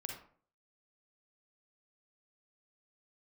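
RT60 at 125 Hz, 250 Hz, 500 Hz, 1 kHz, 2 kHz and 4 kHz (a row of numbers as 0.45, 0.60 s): 0.55, 0.55, 0.50, 0.45, 0.40, 0.30 s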